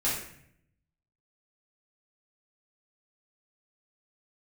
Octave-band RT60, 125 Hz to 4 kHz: 1.2, 0.95, 0.70, 0.60, 0.70, 0.50 s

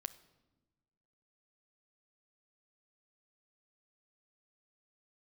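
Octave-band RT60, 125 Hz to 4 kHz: 1.6, 1.6, 1.3, 1.0, 0.85, 0.80 s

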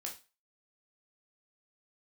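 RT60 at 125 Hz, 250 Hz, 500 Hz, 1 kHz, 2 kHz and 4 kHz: 0.30, 0.25, 0.30, 0.30, 0.30, 0.30 s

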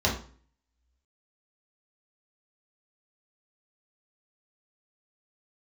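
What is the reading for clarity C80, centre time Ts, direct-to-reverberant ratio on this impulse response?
12.5 dB, 25 ms, -3.5 dB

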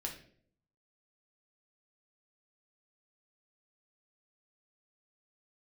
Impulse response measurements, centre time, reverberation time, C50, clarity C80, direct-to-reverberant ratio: 20 ms, 0.55 s, 8.0 dB, 12.0 dB, 0.0 dB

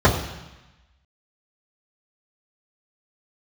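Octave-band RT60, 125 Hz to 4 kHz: 1.1, 1.1, 0.90, 1.1, 1.2, 1.2 s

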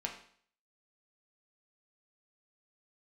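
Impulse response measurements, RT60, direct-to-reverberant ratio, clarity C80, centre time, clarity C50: 0.55 s, 0.0 dB, 11.0 dB, 21 ms, 7.5 dB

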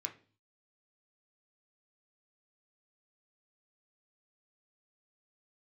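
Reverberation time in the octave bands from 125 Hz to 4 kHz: 0.70, 0.55, 0.45, 0.35, 0.35, 0.35 s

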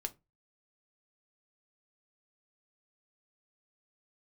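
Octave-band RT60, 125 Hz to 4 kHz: 0.40, 0.30, 0.25, 0.20, 0.20, 0.15 s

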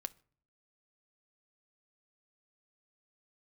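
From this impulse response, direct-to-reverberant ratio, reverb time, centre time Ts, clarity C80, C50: 13.0 dB, 0.50 s, 2 ms, 28.0 dB, 23.0 dB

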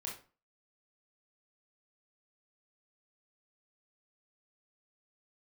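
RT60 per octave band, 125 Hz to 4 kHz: 0.45, 0.40, 0.35, 0.35, 0.30, 0.30 s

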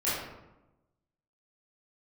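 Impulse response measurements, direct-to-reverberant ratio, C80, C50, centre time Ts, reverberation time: -11.5 dB, 3.0 dB, 0.0 dB, 74 ms, 1.0 s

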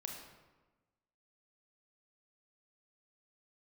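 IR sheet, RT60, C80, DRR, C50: 1.2 s, 5.5 dB, 1.0 dB, 3.5 dB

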